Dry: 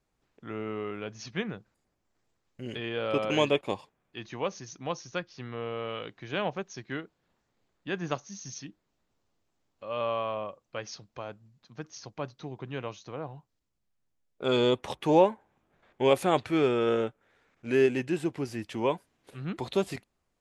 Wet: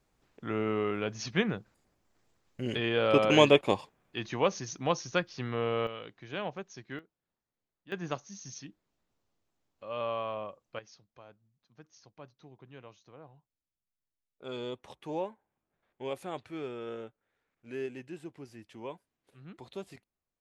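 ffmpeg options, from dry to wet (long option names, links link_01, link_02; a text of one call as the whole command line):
ffmpeg -i in.wav -af "asetnsamples=nb_out_samples=441:pad=0,asendcmd='5.87 volume volume -5.5dB;6.99 volume volume -15.5dB;7.92 volume volume -3.5dB;10.79 volume volume -14dB',volume=4.5dB" out.wav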